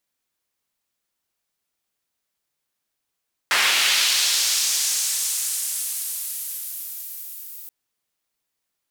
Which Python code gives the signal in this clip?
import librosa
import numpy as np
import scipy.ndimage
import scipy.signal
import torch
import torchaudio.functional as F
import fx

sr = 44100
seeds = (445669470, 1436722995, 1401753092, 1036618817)

y = fx.riser_noise(sr, seeds[0], length_s=4.18, colour='white', kind='bandpass', start_hz=1700.0, end_hz=16000.0, q=1.2, swell_db=-24.0, law='linear')